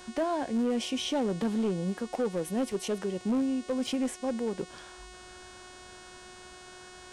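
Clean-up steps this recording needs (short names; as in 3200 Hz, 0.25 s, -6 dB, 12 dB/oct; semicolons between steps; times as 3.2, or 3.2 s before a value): clip repair -23.5 dBFS; de-hum 365.6 Hz, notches 26; interpolate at 2.72/3.87, 1.9 ms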